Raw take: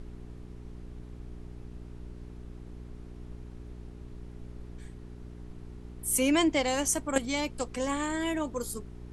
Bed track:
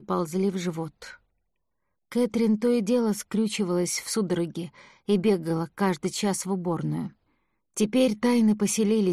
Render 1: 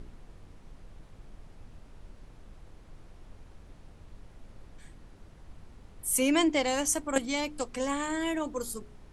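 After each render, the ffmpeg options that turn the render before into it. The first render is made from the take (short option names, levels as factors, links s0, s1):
-af "bandreject=f=60:t=h:w=4,bandreject=f=120:t=h:w=4,bandreject=f=180:t=h:w=4,bandreject=f=240:t=h:w=4,bandreject=f=300:t=h:w=4,bandreject=f=360:t=h:w=4,bandreject=f=420:t=h:w=4"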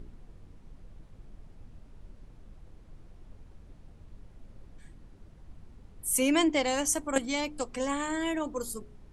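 -af "afftdn=nr=6:nf=-53"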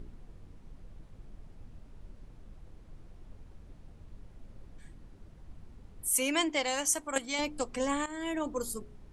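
-filter_complex "[0:a]asettb=1/sr,asplit=3[s0][s1][s2];[s0]atrim=end=6.084[s3];[s1]atrim=start=6.08:end=7.39,asetpts=PTS-STARTPTS,afade=t=in:d=0.004:c=qsin,afade=t=out:st=1.306:d=0.004:c=qsin,lowshelf=f=460:g=-11[s4];[s2]atrim=start=7.386[s5];[s3][s4]acrossfade=d=0.004:c1=hsin:c2=qsin[s6];[s6][s5]acrossfade=d=0.004:c1=qsin:c2=hsin,asplit=2[s7][s8];[s7]atrim=end=8.06,asetpts=PTS-STARTPTS,afade=t=out:st=8.056:d=0.004:c=hsin:silence=0.223872[s9];[s8]atrim=start=8.06,asetpts=PTS-STARTPTS,afade=t=in:d=0.42:silence=0.223872[s10];[s9][s10]concat=n=2:v=0:a=1"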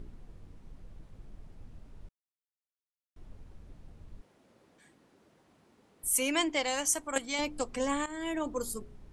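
-filter_complex "[0:a]asettb=1/sr,asplit=3[s0][s1][s2];[s0]atrim=end=4.214[s3];[s1]atrim=start=4.21:end=6.04,asetpts=PTS-STARTPTS,afade=t=in:d=0.004:c=qsin,afade=t=out:st=1.826:d=0.004:c=qsin,highpass=300[s4];[s2]atrim=start=6.036[s5];[s3][s4]acrossfade=d=0.004:c1=hsin:c2=qsin[s6];[s6][s5]acrossfade=d=0.004:c1=qsin:c2=hsin,asplit=3[s7][s8][s9];[s7]atrim=end=2.09,asetpts=PTS-STARTPTS,afade=t=out:st=2.086:d=0.004:c=hsin[s10];[s8]atrim=start=2.09:end=3.16,asetpts=PTS-STARTPTS,volume=0[s11];[s9]atrim=start=3.16,asetpts=PTS-STARTPTS,afade=t=in:d=0.004:c=hsin[s12];[s10][s11][s12]concat=n=3:v=0:a=1"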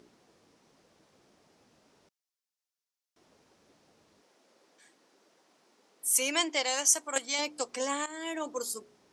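-af "highpass=360,equalizer=f=5500:t=o:w=0.95:g=8.5"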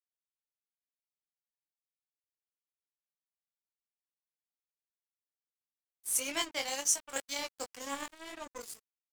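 -af "flanger=delay=17.5:depth=5:speed=1.9,aeval=exprs='sgn(val(0))*max(abs(val(0))-0.01,0)':c=same"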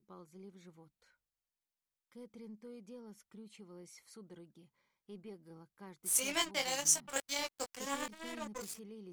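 -filter_complex "[1:a]volume=0.0398[s0];[0:a][s0]amix=inputs=2:normalize=0"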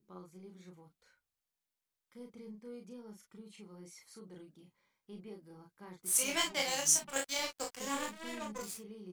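-af "aecho=1:1:33|44:0.596|0.335"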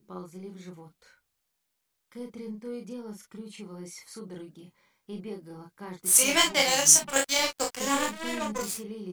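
-af "volume=3.35"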